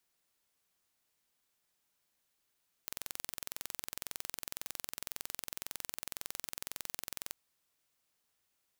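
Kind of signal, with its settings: pulse train 21.9 per s, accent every 0, -11.5 dBFS 4.46 s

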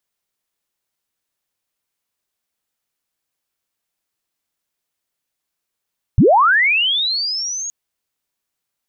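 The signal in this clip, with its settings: sweep linear 73 Hz -> 6.7 kHz -6.5 dBFS -> -23 dBFS 1.52 s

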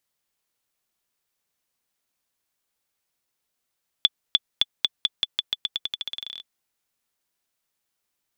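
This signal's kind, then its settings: bouncing ball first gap 0.30 s, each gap 0.88, 3.46 kHz, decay 34 ms -3.5 dBFS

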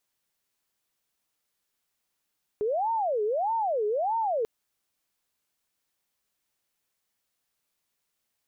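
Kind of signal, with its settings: siren wail 415–915 Hz 1.6 per s sine -24 dBFS 1.84 s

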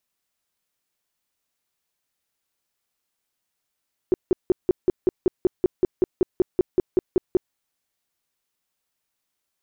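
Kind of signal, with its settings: tone bursts 366 Hz, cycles 7, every 0.19 s, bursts 18, -13 dBFS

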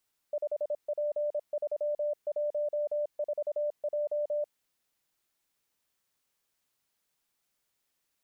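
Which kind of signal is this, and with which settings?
Morse "5P314J" 26 wpm 592 Hz -27.5 dBFS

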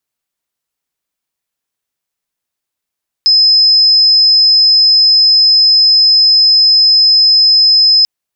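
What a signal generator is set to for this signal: tone sine 5.1 kHz -4.5 dBFS 4.79 s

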